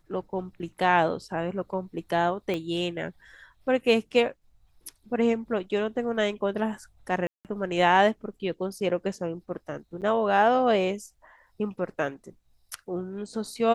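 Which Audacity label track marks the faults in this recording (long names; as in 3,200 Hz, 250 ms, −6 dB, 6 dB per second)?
2.540000	2.540000	click −18 dBFS
7.270000	7.450000	drop-out 178 ms
10.010000	10.020000	drop-out 8.4 ms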